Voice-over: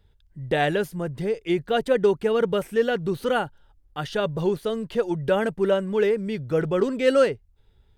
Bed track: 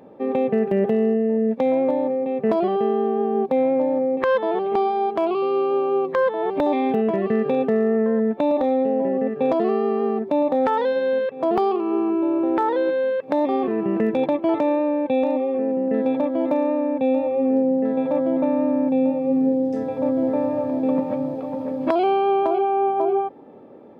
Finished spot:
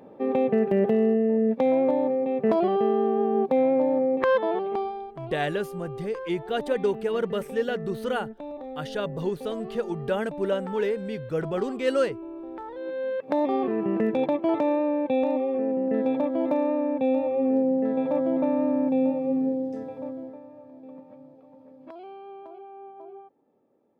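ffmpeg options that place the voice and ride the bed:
ffmpeg -i stem1.wav -i stem2.wav -filter_complex "[0:a]adelay=4800,volume=-5dB[link_01];[1:a]volume=12dB,afade=type=out:start_time=4.38:duration=0.69:silence=0.16788,afade=type=in:start_time=12.75:duration=0.57:silence=0.199526,afade=type=out:start_time=19.08:duration=1.32:silence=0.1[link_02];[link_01][link_02]amix=inputs=2:normalize=0" out.wav

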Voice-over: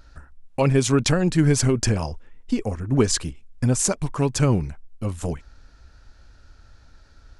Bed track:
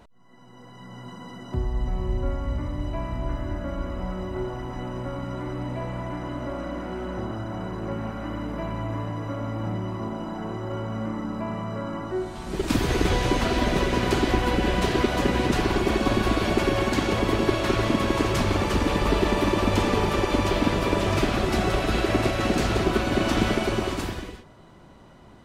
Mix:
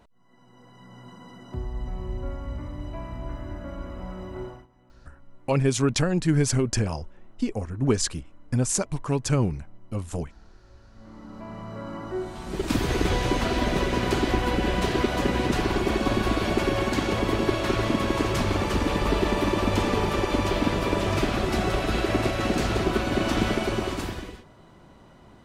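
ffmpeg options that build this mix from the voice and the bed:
ffmpeg -i stem1.wav -i stem2.wav -filter_complex "[0:a]adelay=4900,volume=-3.5dB[link_01];[1:a]volume=20.5dB,afade=type=out:start_time=4.44:duration=0.23:silence=0.0794328,afade=type=in:start_time=10.92:duration=1.38:silence=0.0501187[link_02];[link_01][link_02]amix=inputs=2:normalize=0" out.wav

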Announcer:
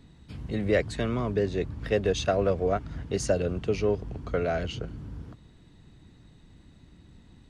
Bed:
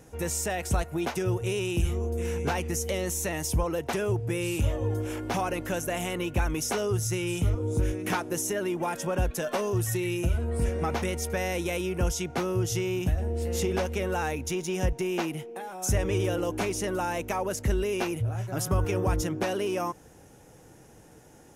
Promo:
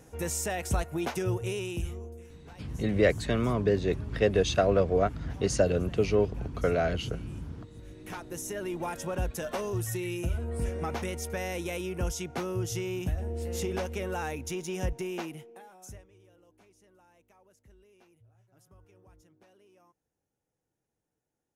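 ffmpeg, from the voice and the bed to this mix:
ffmpeg -i stem1.wav -i stem2.wav -filter_complex "[0:a]adelay=2300,volume=1dB[link_01];[1:a]volume=17dB,afade=type=out:start_time=1.31:duration=1:silence=0.0841395,afade=type=in:start_time=7.81:duration=0.95:silence=0.112202,afade=type=out:start_time=14.93:duration=1.13:silence=0.0375837[link_02];[link_01][link_02]amix=inputs=2:normalize=0" out.wav

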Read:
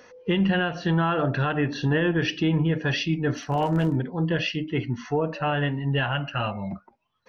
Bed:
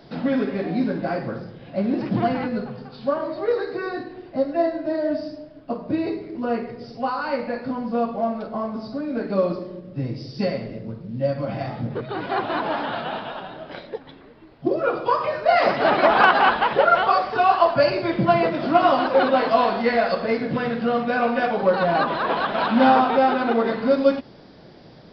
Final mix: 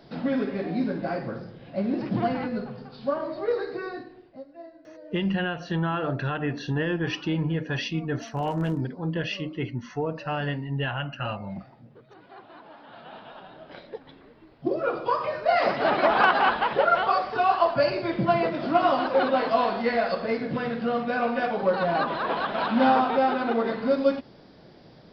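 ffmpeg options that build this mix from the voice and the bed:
ffmpeg -i stem1.wav -i stem2.wav -filter_complex "[0:a]adelay=4850,volume=-4dB[link_01];[1:a]volume=14.5dB,afade=type=out:start_time=3.7:duration=0.75:silence=0.112202,afade=type=in:start_time=12.82:duration=1.44:silence=0.11885[link_02];[link_01][link_02]amix=inputs=2:normalize=0" out.wav

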